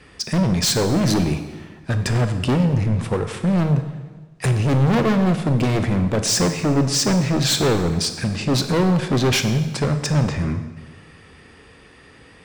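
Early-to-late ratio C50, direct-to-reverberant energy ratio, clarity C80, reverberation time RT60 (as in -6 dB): 9.5 dB, 7.5 dB, 11.0 dB, 1.3 s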